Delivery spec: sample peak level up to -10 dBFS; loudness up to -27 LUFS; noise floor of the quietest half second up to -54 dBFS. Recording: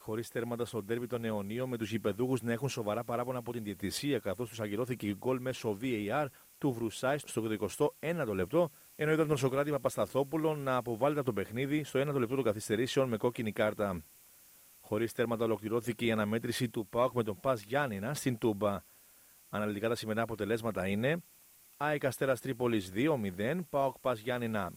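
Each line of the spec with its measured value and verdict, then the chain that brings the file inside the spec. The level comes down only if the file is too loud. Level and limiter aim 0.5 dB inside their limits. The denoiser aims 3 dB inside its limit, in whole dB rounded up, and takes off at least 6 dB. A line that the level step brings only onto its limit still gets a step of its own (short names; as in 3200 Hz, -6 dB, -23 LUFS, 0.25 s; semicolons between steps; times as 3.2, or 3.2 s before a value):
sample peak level -16.5 dBFS: OK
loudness -34.0 LUFS: OK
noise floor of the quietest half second -61 dBFS: OK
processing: none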